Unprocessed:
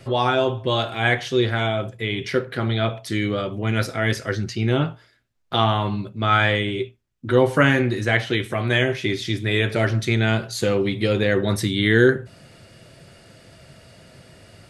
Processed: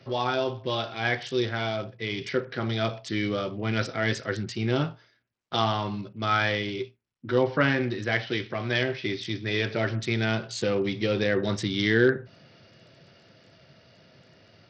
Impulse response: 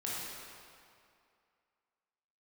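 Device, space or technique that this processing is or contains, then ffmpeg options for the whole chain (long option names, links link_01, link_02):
Bluetooth headset: -af "highpass=110,dynaudnorm=framelen=300:gausssize=17:maxgain=7.5dB,aresample=16000,aresample=44100,volume=-7dB" -ar 44100 -c:a sbc -b:a 64k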